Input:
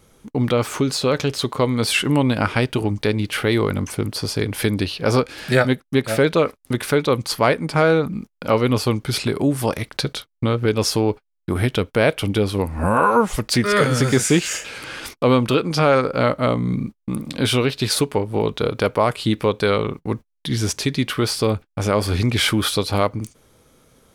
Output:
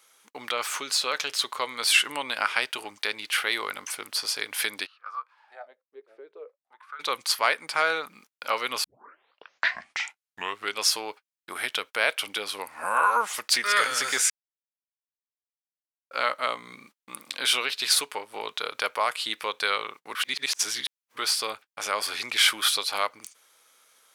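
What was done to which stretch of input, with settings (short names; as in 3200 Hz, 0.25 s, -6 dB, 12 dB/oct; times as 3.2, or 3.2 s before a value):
4.85–6.99 wah 0.26 Hz -> 0.71 Hz 380–1300 Hz, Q 14
8.84 tape start 1.98 s
14.3–16.11 mute
20.15–21.17 reverse
whole clip: HPF 1200 Hz 12 dB/oct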